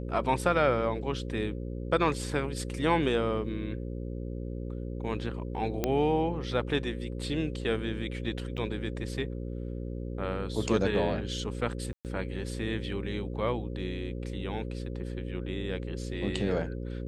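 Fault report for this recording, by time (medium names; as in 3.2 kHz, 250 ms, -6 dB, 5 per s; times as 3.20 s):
buzz 60 Hz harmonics 9 -36 dBFS
5.84 s: pop -13 dBFS
8.57–8.58 s: dropout 5.9 ms
11.93–12.05 s: dropout 118 ms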